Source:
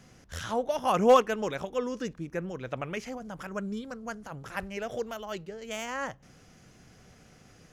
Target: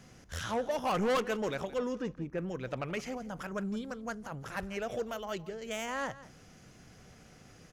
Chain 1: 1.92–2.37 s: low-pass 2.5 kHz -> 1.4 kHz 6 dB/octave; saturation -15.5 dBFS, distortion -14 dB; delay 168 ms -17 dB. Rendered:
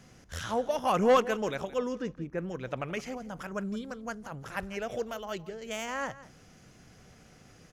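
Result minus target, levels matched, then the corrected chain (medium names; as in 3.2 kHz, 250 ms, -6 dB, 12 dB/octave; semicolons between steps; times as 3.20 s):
saturation: distortion -9 dB
1.92–2.37 s: low-pass 2.5 kHz -> 1.4 kHz 6 dB/octave; saturation -26 dBFS, distortion -5 dB; delay 168 ms -17 dB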